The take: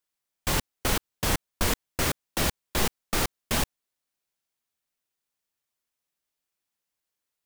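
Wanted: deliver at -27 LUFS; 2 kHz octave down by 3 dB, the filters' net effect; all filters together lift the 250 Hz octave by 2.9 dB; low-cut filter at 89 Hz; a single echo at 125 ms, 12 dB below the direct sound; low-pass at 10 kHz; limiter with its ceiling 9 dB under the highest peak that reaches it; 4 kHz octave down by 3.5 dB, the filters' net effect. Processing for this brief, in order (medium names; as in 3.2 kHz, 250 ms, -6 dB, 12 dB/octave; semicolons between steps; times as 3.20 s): high-pass 89 Hz; low-pass 10 kHz; peaking EQ 250 Hz +4 dB; peaking EQ 2 kHz -3 dB; peaking EQ 4 kHz -3.5 dB; peak limiter -22.5 dBFS; delay 125 ms -12 dB; trim +8.5 dB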